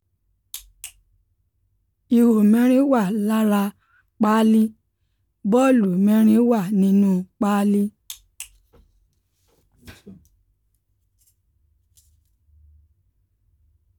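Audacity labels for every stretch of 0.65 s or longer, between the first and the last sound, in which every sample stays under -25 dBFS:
0.860000	2.120000	silence
4.670000	5.450000	silence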